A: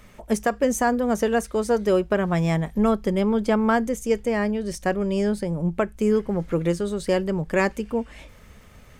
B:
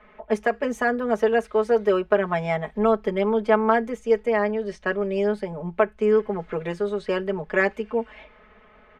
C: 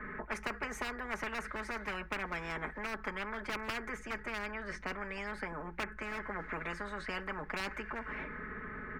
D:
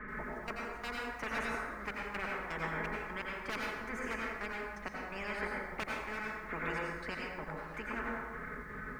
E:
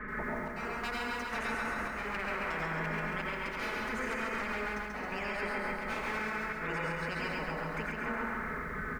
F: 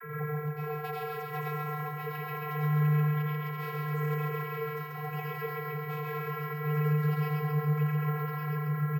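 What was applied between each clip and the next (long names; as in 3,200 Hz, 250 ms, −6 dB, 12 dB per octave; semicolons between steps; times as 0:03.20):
low-pass that shuts in the quiet parts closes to 2,400 Hz, open at −20 dBFS; three-way crossover with the lows and the highs turned down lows −14 dB, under 350 Hz, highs −20 dB, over 3,400 Hz; comb filter 4.7 ms, depth 94%
hard clipping −14.5 dBFS, distortion −15 dB; drawn EQ curve 310 Hz 0 dB, 660 Hz −23 dB, 1,700 Hz −1 dB, 3,100 Hz −28 dB, 4,700 Hz −23 dB; every bin compressed towards the loudest bin 10 to 1; level −3.5 dB
gate pattern "xx..x..x..x" 126 BPM −24 dB; dense smooth reverb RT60 1.5 s, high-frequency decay 0.45×, pre-delay 75 ms, DRR −3.5 dB; feedback echo at a low word length 83 ms, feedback 55%, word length 9 bits, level −15 dB; level −1.5 dB
volume swells 184 ms; repeating echo 136 ms, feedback 57%, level −3 dB; brickwall limiter −30 dBFS, peak gain reduction 6.5 dB; level +4 dB
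channel vocoder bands 32, square 150 Hz; bad sample-rate conversion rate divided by 3×, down none, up hold; single-tap delay 1,161 ms −6.5 dB; level +5 dB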